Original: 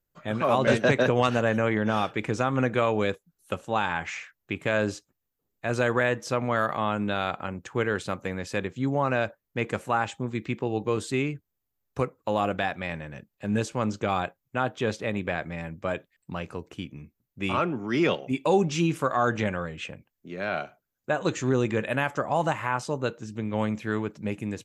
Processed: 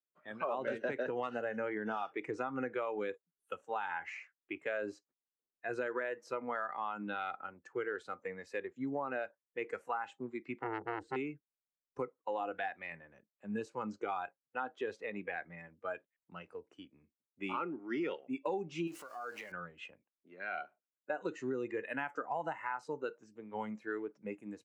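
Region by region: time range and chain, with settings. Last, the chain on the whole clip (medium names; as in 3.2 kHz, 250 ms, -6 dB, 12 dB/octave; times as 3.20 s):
10.62–11.16 s: tilt EQ -4 dB/octave + transformer saturation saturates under 1.3 kHz
18.87–19.52 s: jump at every zero crossing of -32.5 dBFS + tone controls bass -8 dB, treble +6 dB + compression 12:1, threshold -28 dBFS
whole clip: spectral noise reduction 12 dB; three-band isolator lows -20 dB, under 220 Hz, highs -16 dB, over 2.4 kHz; compression 6:1, threshold -28 dBFS; trim -5 dB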